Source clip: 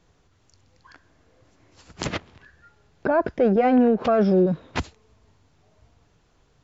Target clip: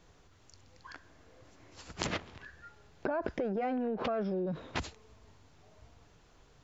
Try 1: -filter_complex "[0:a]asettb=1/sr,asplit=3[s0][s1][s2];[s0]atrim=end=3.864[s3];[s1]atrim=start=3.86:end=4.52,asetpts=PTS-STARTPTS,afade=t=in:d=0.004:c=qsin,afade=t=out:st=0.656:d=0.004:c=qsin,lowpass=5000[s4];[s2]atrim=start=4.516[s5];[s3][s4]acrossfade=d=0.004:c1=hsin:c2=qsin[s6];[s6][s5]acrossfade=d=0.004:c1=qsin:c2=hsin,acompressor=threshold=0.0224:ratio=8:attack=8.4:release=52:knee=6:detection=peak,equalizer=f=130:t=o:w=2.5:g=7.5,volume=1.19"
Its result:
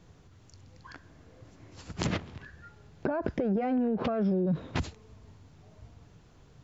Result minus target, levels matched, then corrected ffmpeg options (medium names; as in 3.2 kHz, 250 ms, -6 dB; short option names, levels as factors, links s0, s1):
125 Hz band +4.5 dB
-filter_complex "[0:a]asettb=1/sr,asplit=3[s0][s1][s2];[s0]atrim=end=3.864[s3];[s1]atrim=start=3.86:end=4.52,asetpts=PTS-STARTPTS,afade=t=in:d=0.004:c=qsin,afade=t=out:st=0.656:d=0.004:c=qsin,lowpass=5000[s4];[s2]atrim=start=4.516[s5];[s3][s4]acrossfade=d=0.004:c1=hsin:c2=qsin[s6];[s6][s5]acrossfade=d=0.004:c1=qsin:c2=hsin,acompressor=threshold=0.0224:ratio=8:attack=8.4:release=52:knee=6:detection=peak,equalizer=f=130:t=o:w=2.5:g=-3,volume=1.19"